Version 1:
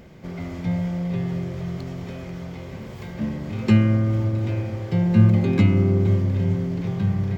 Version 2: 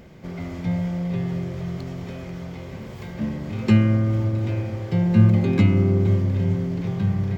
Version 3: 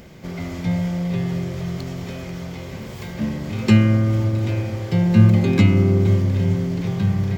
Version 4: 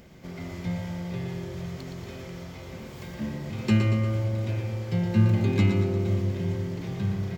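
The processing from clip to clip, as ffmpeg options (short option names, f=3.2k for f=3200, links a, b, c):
-af anull
-af "highshelf=f=3.2k:g=8,volume=2.5dB"
-af "aecho=1:1:117|234|351|468|585|702|819:0.473|0.256|0.138|0.0745|0.0402|0.0217|0.0117,volume=-8dB"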